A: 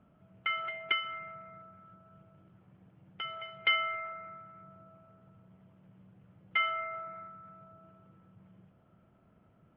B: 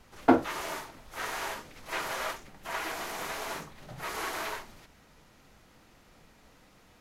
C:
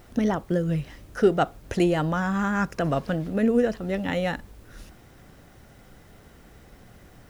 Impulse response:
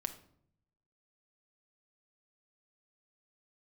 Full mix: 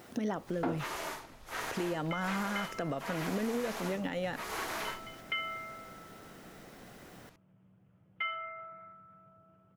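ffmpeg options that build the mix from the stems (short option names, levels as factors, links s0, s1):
-filter_complex "[0:a]adelay=1650,volume=0.531[s0];[1:a]adelay=350,volume=0.75[s1];[2:a]highpass=180,acompressor=threshold=0.0355:ratio=5,volume=1.12,asplit=3[s2][s3][s4];[s2]atrim=end=0.86,asetpts=PTS-STARTPTS,afade=t=out:st=0.856:d=0.004:c=hsin[s5];[s3]atrim=start=0.86:end=1.6,asetpts=PTS-STARTPTS,volume=0[s6];[s4]atrim=start=1.6,asetpts=PTS-STARTPTS,afade=t=in:d=0.004:c=hsin[s7];[s5][s6][s7]concat=n=3:v=0:a=1[s8];[s0][s1][s8]amix=inputs=3:normalize=0,asoftclip=type=tanh:threshold=0.251,alimiter=level_in=1.06:limit=0.0631:level=0:latency=1:release=181,volume=0.944"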